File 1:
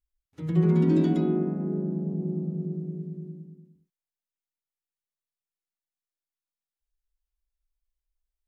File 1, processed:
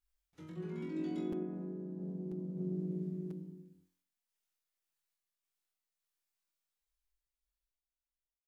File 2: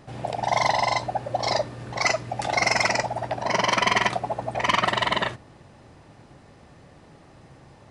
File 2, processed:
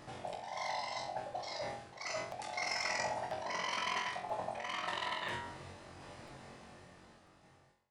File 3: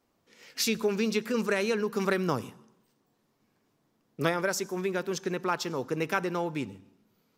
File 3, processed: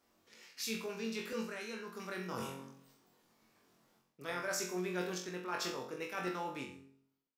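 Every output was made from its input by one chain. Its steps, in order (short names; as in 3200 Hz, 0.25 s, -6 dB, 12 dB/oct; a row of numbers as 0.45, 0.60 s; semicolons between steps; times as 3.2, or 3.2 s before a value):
ending faded out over 2.08 s; low shelf 460 Hz -7.5 dB; de-hum 135.7 Hz, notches 31; reverse; compressor 12:1, threshold -39 dBFS; reverse; random-step tremolo; on a send: flutter echo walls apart 3.8 m, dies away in 0.41 s; on the sum: crackling interface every 0.99 s, samples 256, repeat, from 0.33; gain +3.5 dB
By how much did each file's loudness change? -14.5, -15.0, -10.5 LU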